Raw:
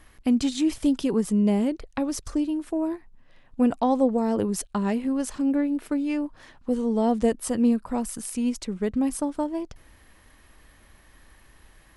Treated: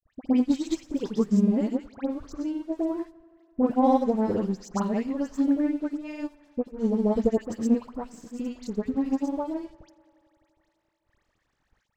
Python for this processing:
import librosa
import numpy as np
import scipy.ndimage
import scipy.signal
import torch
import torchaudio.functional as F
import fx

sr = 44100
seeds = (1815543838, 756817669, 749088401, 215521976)

p1 = scipy.signal.sosfilt(scipy.signal.butter(16, 7600.0, 'lowpass', fs=sr, output='sos'), x)
p2 = fx.peak_eq(p1, sr, hz=3100.0, db=-6.0, octaves=1.3)
p3 = fx.hum_notches(p2, sr, base_hz=60, count=7)
p4 = np.sign(p3) * np.maximum(np.abs(p3) - 10.0 ** (-50.0 / 20.0), 0.0)
p5 = fx.granulator(p4, sr, seeds[0], grain_ms=100.0, per_s=20.0, spray_ms=100.0, spread_st=0)
p6 = fx.dispersion(p5, sr, late='highs', ms=87.0, hz=1800.0)
p7 = fx.vibrato(p6, sr, rate_hz=0.39, depth_cents=49.0)
p8 = p7 + fx.echo_tape(p7, sr, ms=86, feedback_pct=86, wet_db=-20.5, lp_hz=5200.0, drive_db=17.0, wow_cents=10, dry=0)
p9 = fx.upward_expand(p8, sr, threshold_db=-35.0, expansion=1.5)
y = p9 * 10.0 ** (3.5 / 20.0)